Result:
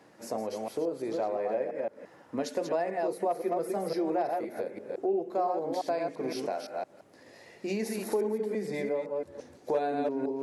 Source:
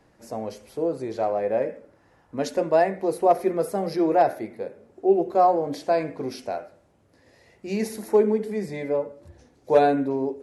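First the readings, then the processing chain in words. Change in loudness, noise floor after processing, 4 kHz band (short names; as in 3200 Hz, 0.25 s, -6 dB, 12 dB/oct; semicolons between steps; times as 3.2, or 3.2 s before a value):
-8.0 dB, -57 dBFS, -3.5 dB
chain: reverse delay 0.171 s, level -5 dB; HPF 190 Hz 12 dB/oct; compressor 3:1, threshold -35 dBFS, peak gain reduction 17.5 dB; gain +3.5 dB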